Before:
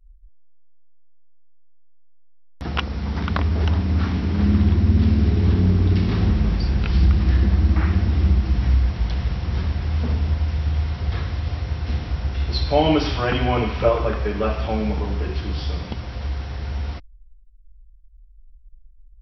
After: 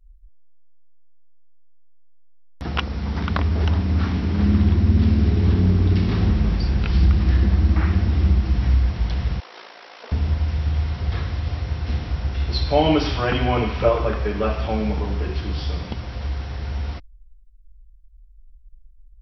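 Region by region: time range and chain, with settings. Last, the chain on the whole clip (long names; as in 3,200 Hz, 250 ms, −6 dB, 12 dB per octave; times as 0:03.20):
0:09.40–0:10.12: high-pass filter 470 Hz 24 dB per octave + amplitude modulation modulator 56 Hz, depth 45%
whole clip: no processing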